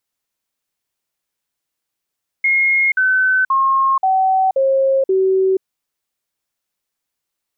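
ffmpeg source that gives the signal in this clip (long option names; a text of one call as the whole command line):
ffmpeg -f lavfi -i "aevalsrc='0.266*clip(min(mod(t,0.53),0.48-mod(t,0.53))/0.005,0,1)*sin(2*PI*2150*pow(2,-floor(t/0.53)/2)*mod(t,0.53))':duration=3.18:sample_rate=44100" out.wav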